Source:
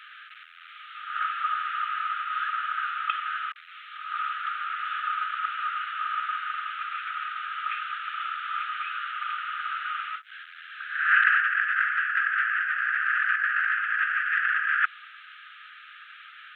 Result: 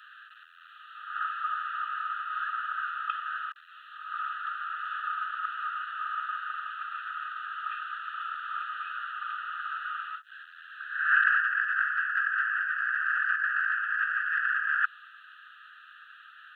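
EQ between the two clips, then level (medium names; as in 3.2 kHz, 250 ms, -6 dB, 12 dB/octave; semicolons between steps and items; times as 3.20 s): high-pass 1.3 kHz 24 dB/octave; Butterworth band-stop 2.2 kHz, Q 2.3; peaking EQ 3.3 kHz -9 dB 0.49 oct; 0.0 dB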